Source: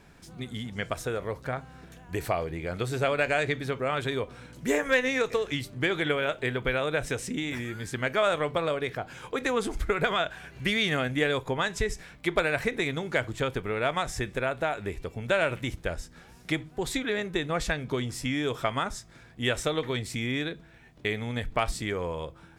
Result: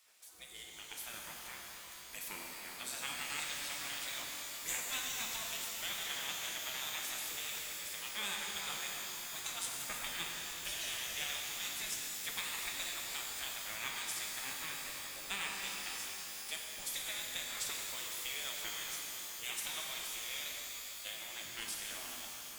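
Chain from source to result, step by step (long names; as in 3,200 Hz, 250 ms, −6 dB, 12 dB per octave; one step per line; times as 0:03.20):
gate on every frequency bin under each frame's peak −15 dB weak
first-order pre-emphasis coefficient 0.8
reverb with rising layers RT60 3.7 s, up +12 semitones, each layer −2 dB, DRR −1 dB
level +1 dB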